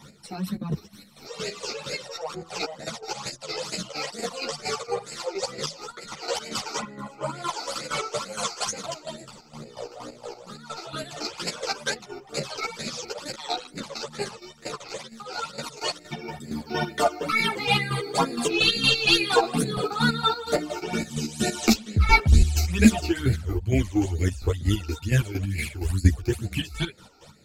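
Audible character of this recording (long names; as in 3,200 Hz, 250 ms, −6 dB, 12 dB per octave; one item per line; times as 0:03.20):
phaser sweep stages 12, 2.2 Hz, lowest notch 170–1,100 Hz
chopped level 4.3 Hz, depth 65%, duty 40%
a shimmering, thickened sound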